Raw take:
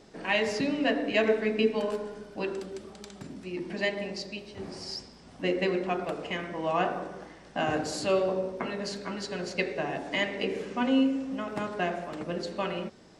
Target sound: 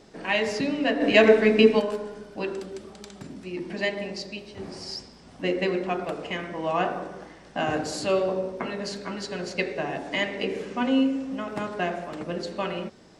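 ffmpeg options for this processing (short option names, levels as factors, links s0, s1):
-filter_complex "[0:a]asplit=3[s0][s1][s2];[s0]afade=t=out:st=1:d=0.02[s3];[s1]acontrast=76,afade=t=in:st=1:d=0.02,afade=t=out:st=1.79:d=0.02[s4];[s2]afade=t=in:st=1.79:d=0.02[s5];[s3][s4][s5]amix=inputs=3:normalize=0,volume=1.26"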